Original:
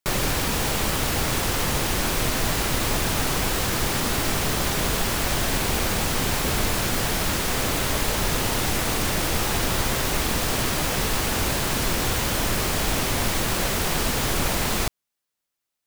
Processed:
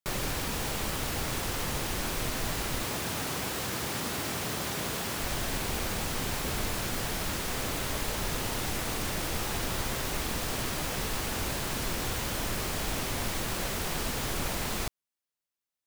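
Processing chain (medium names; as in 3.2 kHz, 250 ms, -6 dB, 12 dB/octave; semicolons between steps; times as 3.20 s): 2.83–5.20 s: high-pass 93 Hz 12 dB/octave; trim -8.5 dB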